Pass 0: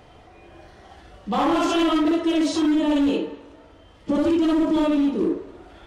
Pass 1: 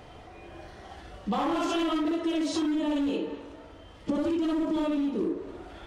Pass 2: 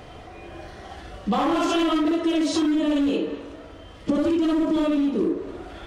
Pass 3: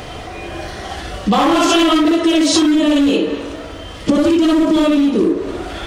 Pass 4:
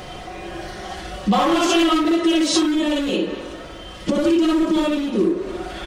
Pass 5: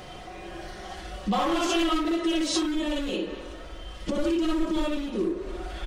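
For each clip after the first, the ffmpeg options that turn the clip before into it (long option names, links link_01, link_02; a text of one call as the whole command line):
ffmpeg -i in.wav -af "acompressor=threshold=-27dB:ratio=6,volume=1dB" out.wav
ffmpeg -i in.wav -af "bandreject=frequency=890:width=13,volume=6dB" out.wav
ffmpeg -i in.wav -filter_complex "[0:a]asplit=2[link_01][link_02];[link_02]acompressor=threshold=-28dB:ratio=6,volume=0dB[link_03];[link_01][link_03]amix=inputs=2:normalize=0,highshelf=frequency=2600:gain=7,volume=5.5dB" out.wav
ffmpeg -i in.wav -af "aecho=1:1:5.5:0.52,volume=-5.5dB" out.wav
ffmpeg -i in.wav -af "asubboost=boost=6:cutoff=58,volume=-7.5dB" out.wav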